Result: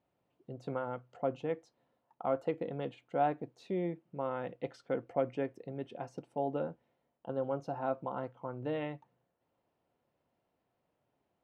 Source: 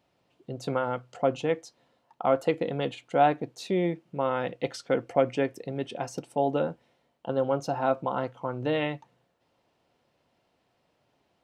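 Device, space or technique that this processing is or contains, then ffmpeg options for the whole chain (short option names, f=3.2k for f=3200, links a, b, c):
through cloth: -af "highshelf=f=3.4k:g=-16.5,volume=-8dB"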